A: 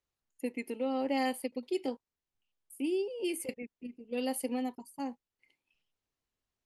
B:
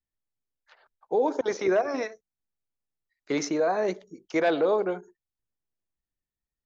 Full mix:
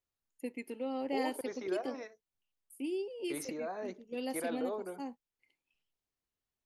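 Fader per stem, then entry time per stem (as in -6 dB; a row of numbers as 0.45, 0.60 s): -4.5, -14.5 dB; 0.00, 0.00 s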